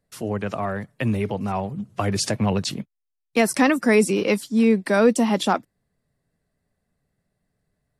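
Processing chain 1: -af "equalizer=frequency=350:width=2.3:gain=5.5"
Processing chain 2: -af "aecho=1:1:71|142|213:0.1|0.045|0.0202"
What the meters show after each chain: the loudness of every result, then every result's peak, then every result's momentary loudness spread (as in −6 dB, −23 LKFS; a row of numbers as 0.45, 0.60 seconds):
−20.5, −22.0 LKFS; −4.5, −6.0 dBFS; 11, 11 LU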